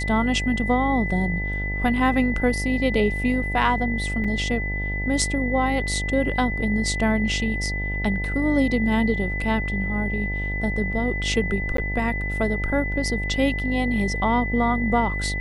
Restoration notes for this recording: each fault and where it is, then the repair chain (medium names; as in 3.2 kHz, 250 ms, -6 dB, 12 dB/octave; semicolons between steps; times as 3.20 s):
buzz 50 Hz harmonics 18 -28 dBFS
whine 2 kHz -28 dBFS
4.24–4.25 s: dropout 5 ms
11.77–11.78 s: dropout 13 ms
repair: band-stop 2 kHz, Q 30; de-hum 50 Hz, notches 18; interpolate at 4.24 s, 5 ms; interpolate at 11.77 s, 13 ms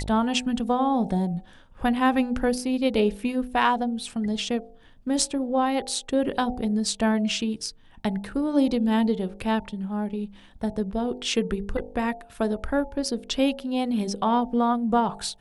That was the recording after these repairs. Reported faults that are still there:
nothing left